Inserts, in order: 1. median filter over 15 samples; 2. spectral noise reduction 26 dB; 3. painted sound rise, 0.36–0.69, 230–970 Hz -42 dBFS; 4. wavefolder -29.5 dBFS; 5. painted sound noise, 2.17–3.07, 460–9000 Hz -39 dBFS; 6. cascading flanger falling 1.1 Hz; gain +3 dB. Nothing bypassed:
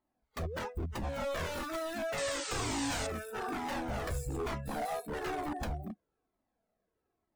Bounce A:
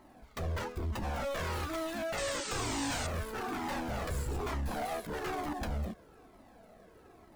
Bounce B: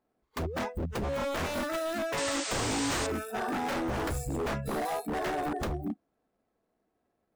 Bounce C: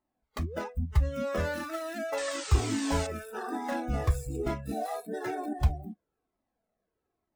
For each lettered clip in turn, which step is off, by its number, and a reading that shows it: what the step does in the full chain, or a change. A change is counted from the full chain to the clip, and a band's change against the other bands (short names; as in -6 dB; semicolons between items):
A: 2, 125 Hz band +2.5 dB; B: 6, loudness change +4.5 LU; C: 4, crest factor change +5.0 dB